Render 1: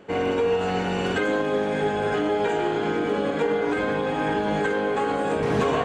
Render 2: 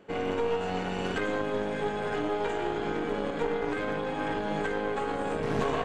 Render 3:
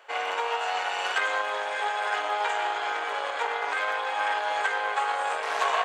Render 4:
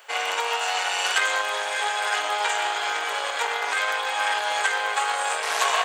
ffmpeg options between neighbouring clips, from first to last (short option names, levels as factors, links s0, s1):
-af "aeval=exprs='0.224*(cos(1*acos(clip(val(0)/0.224,-1,1)))-cos(1*PI/2))+0.0794*(cos(2*acos(clip(val(0)/0.224,-1,1)))-cos(2*PI/2))':c=same,volume=0.447"
-af "highpass=f=720:w=0.5412,highpass=f=720:w=1.3066,volume=2.66"
-af "crystalizer=i=4.5:c=0"